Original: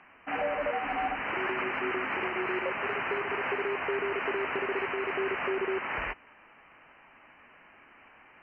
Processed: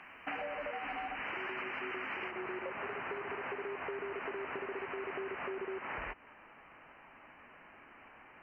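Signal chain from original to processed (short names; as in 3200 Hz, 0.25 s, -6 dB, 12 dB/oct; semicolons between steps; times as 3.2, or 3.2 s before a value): high shelf 2300 Hz +7.5 dB, from 2.31 s -6.5 dB; compressor 10:1, threshold -38 dBFS, peak gain reduction 12.5 dB; gain +1 dB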